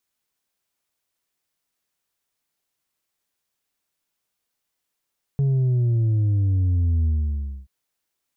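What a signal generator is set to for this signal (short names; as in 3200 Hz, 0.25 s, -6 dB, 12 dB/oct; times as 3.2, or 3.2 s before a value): sub drop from 140 Hz, over 2.28 s, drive 3.5 dB, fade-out 0.61 s, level -17.5 dB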